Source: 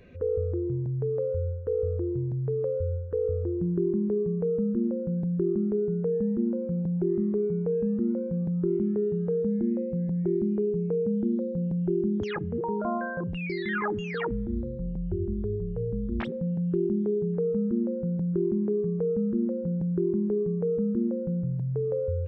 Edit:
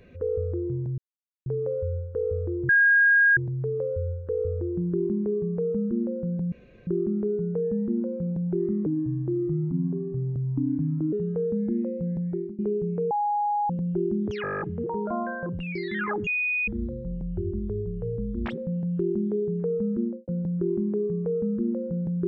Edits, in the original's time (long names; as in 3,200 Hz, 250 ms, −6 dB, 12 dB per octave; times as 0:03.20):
0:00.98: splice in silence 0.48 s
0:02.21: insert tone 1,630 Hz −15 dBFS 0.68 s
0:05.36: splice in room tone 0.35 s
0:07.35–0:09.05: play speed 75%
0:10.01–0:10.51: fade out equal-power, to −23.5 dB
0:11.03–0:11.62: beep over 828 Hz −22 dBFS
0:12.35: stutter 0.02 s, 10 plays
0:14.01–0:14.42: beep over 2,480 Hz −23 dBFS
0:17.74–0:18.02: fade out and dull